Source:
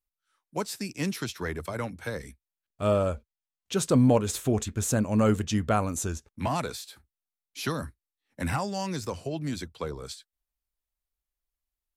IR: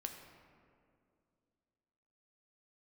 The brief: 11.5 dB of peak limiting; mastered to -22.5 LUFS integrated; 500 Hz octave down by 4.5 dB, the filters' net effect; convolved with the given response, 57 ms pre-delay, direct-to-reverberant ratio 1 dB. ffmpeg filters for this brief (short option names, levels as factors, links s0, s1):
-filter_complex "[0:a]equalizer=f=500:t=o:g=-5.5,alimiter=level_in=1.06:limit=0.0631:level=0:latency=1,volume=0.944,asplit=2[s0][s1];[1:a]atrim=start_sample=2205,adelay=57[s2];[s1][s2]afir=irnorm=-1:irlink=0,volume=1.19[s3];[s0][s3]amix=inputs=2:normalize=0,volume=3.16"